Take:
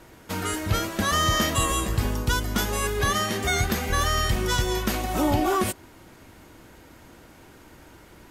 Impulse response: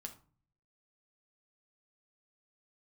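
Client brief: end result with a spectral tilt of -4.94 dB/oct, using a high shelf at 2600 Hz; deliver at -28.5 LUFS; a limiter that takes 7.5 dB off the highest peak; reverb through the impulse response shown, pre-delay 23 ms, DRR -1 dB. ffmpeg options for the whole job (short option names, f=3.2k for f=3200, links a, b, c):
-filter_complex "[0:a]highshelf=f=2.6k:g=-8,alimiter=limit=-20.5dB:level=0:latency=1,asplit=2[a][b];[1:a]atrim=start_sample=2205,adelay=23[c];[b][c]afir=irnorm=-1:irlink=0,volume=5.5dB[d];[a][d]amix=inputs=2:normalize=0,volume=-2dB"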